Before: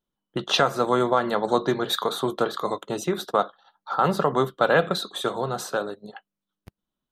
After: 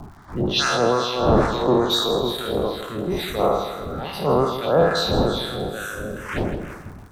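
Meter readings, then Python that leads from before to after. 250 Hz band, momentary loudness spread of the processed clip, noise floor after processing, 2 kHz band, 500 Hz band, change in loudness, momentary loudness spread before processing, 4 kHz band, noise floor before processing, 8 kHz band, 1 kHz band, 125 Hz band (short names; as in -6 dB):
+5.0 dB, 12 LU, -40 dBFS, +0.5 dB, +3.5 dB, +2.5 dB, 9 LU, +5.0 dB, under -85 dBFS, +3.0 dB, +0.5 dB, +7.0 dB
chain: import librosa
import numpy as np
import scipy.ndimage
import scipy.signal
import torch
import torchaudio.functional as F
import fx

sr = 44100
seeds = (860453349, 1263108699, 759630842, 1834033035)

p1 = fx.spec_trails(x, sr, decay_s=2.38)
p2 = fx.dmg_wind(p1, sr, seeds[0], corner_hz=570.0, level_db=-25.0)
p3 = fx.peak_eq(p2, sr, hz=78.0, db=5.5, octaves=0.77)
p4 = fx.transient(p3, sr, attack_db=-7, sustain_db=-2)
p5 = np.clip(10.0 ** (11.0 / 20.0) * p4, -1.0, 1.0) / 10.0 ** (11.0 / 20.0)
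p6 = p4 + (p5 * 10.0 ** (-6.5 / 20.0))
p7 = fx.harmonic_tremolo(p6, sr, hz=2.3, depth_pct=100, crossover_hz=1100.0)
p8 = fx.env_phaser(p7, sr, low_hz=410.0, high_hz=3400.0, full_db=-13.5)
p9 = p8 + fx.echo_feedback(p8, sr, ms=161, feedback_pct=39, wet_db=-10.5, dry=0)
y = fx.dmg_crackle(p9, sr, seeds[1], per_s=120.0, level_db=-40.0)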